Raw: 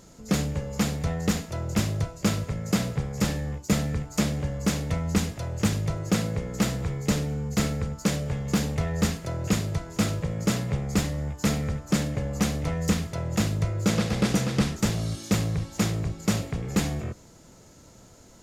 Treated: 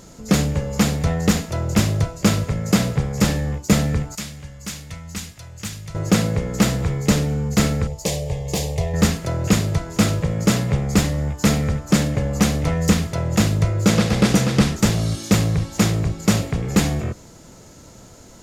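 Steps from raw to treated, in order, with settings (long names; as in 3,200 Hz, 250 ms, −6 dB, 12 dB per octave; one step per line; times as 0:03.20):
0:04.15–0:05.95: guitar amp tone stack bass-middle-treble 5-5-5
0:07.87–0:08.94: phaser with its sweep stopped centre 580 Hz, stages 4
level +7.5 dB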